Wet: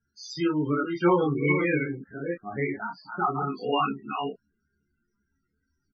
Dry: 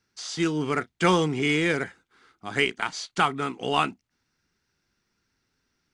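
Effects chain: reverse delay 0.331 s, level -6.5 dB; chorus voices 6, 0.9 Hz, delay 25 ms, depth 2.9 ms; 1.84–3.48 running mean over 13 samples; in parallel at -11 dB: soft clip -26 dBFS, distortion -9 dB; on the sum: loudest bins only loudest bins 16; on a send: early reflections 14 ms -4.5 dB, 29 ms -6 dB

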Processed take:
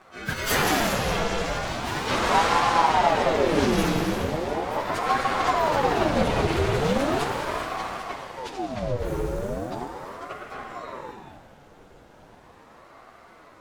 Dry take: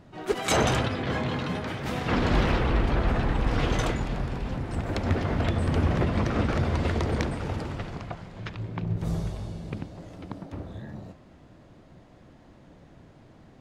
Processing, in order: pitch shift by moving bins +10 st; non-linear reverb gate 0.45 s flat, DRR 2 dB; ring modulator with a swept carrier 590 Hz, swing 60%, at 0.38 Hz; gain +7 dB

